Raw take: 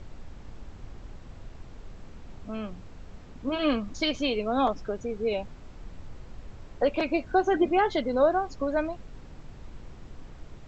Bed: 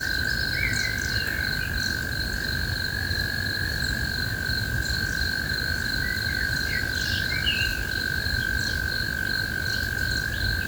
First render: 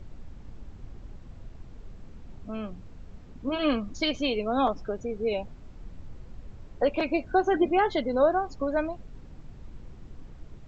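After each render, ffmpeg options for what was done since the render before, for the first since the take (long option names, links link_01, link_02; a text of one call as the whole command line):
ffmpeg -i in.wav -af "afftdn=noise_reduction=6:noise_floor=-46" out.wav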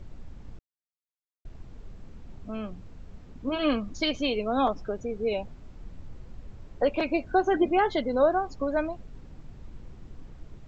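ffmpeg -i in.wav -filter_complex "[0:a]asplit=3[link_01][link_02][link_03];[link_01]atrim=end=0.59,asetpts=PTS-STARTPTS,afade=type=out:start_time=0.586:duration=0.004:curve=hsin[link_04];[link_02]atrim=start=0.59:end=1.45,asetpts=PTS-STARTPTS,volume=0[link_05];[link_03]atrim=start=1.45,asetpts=PTS-STARTPTS,afade=type=in:duration=0.004:curve=hsin[link_06];[link_04][link_05][link_06]concat=n=3:v=0:a=1" out.wav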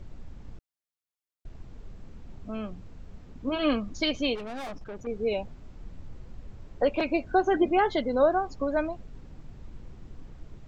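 ffmpeg -i in.wav -filter_complex "[0:a]asettb=1/sr,asplit=3[link_01][link_02][link_03];[link_01]atrim=end=4.354[link_04];[link_02]atrim=start=4.35:end=5.07,asetpts=PTS-STARTPTS,afade=type=in:duration=0.004:curve=qsin,afade=type=out:start_time=0.716:duration=0.004:curve=qsin,aeval=exprs='(tanh(56.2*val(0)+0.55)-tanh(0.55))/56.2':channel_layout=same[link_05];[link_03]atrim=start=5.066[link_06];[link_04][link_05]acrossfade=duration=0.004:curve1=hsin:curve2=qsin[link_07];[link_07][link_06]acrossfade=duration=0.004:curve1=qsin:curve2=hsin" out.wav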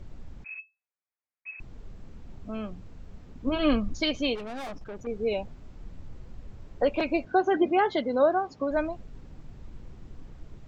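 ffmpeg -i in.wav -filter_complex "[0:a]asettb=1/sr,asplit=3[link_01][link_02][link_03];[link_01]atrim=end=0.444[link_04];[link_02]atrim=start=0.44:end=1.6,asetpts=PTS-STARTPTS,afade=type=in:duration=0.004:curve=qsin,afade=type=out:start_time=1.156:duration=0.004:curve=qsin,lowpass=frequency=2200:width_type=q:width=0.5098,lowpass=frequency=2200:width_type=q:width=0.6013,lowpass=frequency=2200:width_type=q:width=0.9,lowpass=frequency=2200:width_type=q:width=2.563,afreqshift=-2600[link_05];[link_03]atrim=start=1.596[link_06];[link_04][link_05]acrossfade=duration=0.004:curve1=hsin:curve2=qsin[link_07];[link_07][link_06]acrossfade=duration=0.004:curve1=qsin:curve2=hsin,asettb=1/sr,asplit=3[link_08][link_09][link_10];[link_08]atrim=end=3.464[link_11];[link_09]atrim=start=3.46:end=3.95,asetpts=PTS-STARTPTS,afade=type=in:duration=0.004:curve=qsin,afade=type=out:start_time=0.486:duration=0.004:curve=qsin,lowshelf=frequency=150:gain=10[link_12];[link_10]atrim=start=3.946[link_13];[link_11][link_12]acrossfade=duration=0.004:curve1=hsin:curve2=qsin[link_14];[link_14][link_13]acrossfade=duration=0.004:curve1=qsin:curve2=hsin,asettb=1/sr,asplit=3[link_15][link_16][link_17];[link_15]atrim=end=7.254[link_18];[link_16]atrim=start=7.25:end=8.71,asetpts=PTS-STARTPTS,afade=type=in:duration=0.004:curve=qsin,afade=type=out:start_time=1.456:duration=0.004:curve=qsin,highpass=130,lowpass=6000[link_19];[link_17]atrim=start=8.706[link_20];[link_18][link_19]acrossfade=duration=0.004:curve1=hsin:curve2=qsin[link_21];[link_21][link_20]acrossfade=duration=0.004:curve1=qsin:curve2=hsin" out.wav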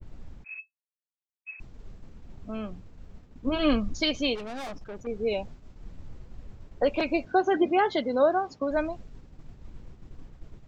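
ffmpeg -i in.wav -af "agate=range=-33dB:threshold=-39dB:ratio=3:detection=peak,adynamicequalizer=threshold=0.00447:dfrequency=5800:dqfactor=0.82:tfrequency=5800:tqfactor=0.82:attack=5:release=100:ratio=0.375:range=2:mode=boostabove:tftype=bell" out.wav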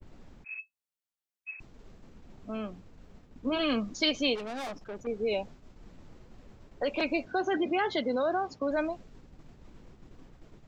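ffmpeg -i in.wav -filter_complex "[0:a]acrossover=split=170|1500[link_01][link_02][link_03];[link_01]acompressor=threshold=-49dB:ratio=6[link_04];[link_02]alimiter=limit=-23dB:level=0:latency=1:release=34[link_05];[link_04][link_05][link_03]amix=inputs=3:normalize=0" out.wav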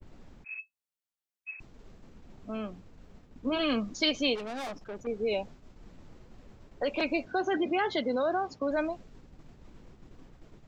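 ffmpeg -i in.wav -af anull out.wav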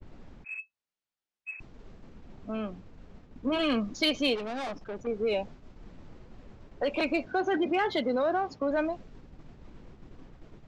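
ffmpeg -i in.wav -filter_complex "[0:a]asplit=2[link_01][link_02];[link_02]asoftclip=type=tanh:threshold=-32dB,volume=-8dB[link_03];[link_01][link_03]amix=inputs=2:normalize=0,adynamicsmooth=sensitivity=2:basefreq=6400" out.wav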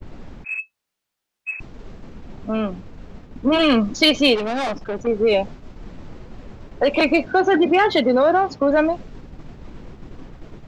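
ffmpeg -i in.wav -af "volume=11.5dB" out.wav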